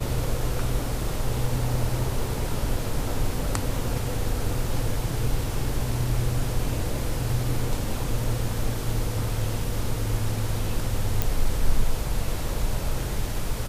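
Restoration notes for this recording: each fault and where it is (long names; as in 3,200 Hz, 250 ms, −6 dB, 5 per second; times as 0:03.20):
0:11.22: click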